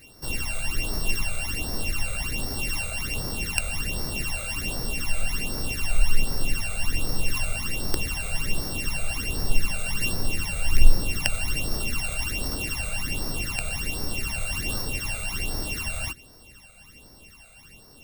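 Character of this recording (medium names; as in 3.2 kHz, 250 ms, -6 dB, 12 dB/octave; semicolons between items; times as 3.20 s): a buzz of ramps at a fixed pitch in blocks of 16 samples; phasing stages 12, 1.3 Hz, lowest notch 300–2700 Hz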